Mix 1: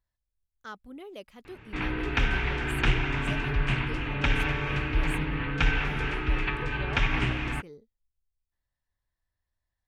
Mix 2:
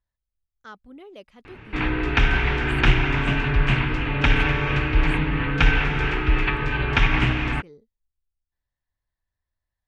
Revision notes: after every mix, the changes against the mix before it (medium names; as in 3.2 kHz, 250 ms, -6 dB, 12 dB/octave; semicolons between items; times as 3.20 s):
background +7.0 dB; master: add distance through air 54 m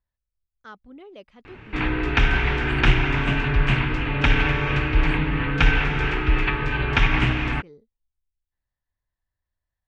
speech: add distance through air 72 m